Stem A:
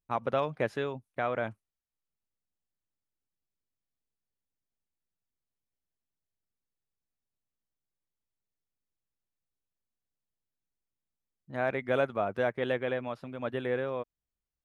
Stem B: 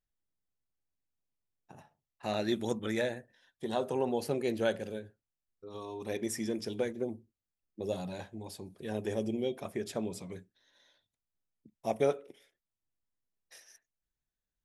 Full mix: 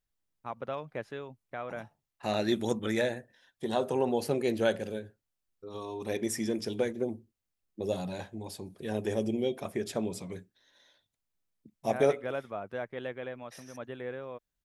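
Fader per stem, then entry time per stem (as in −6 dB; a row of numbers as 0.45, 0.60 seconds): −7.5, +3.0 decibels; 0.35, 0.00 seconds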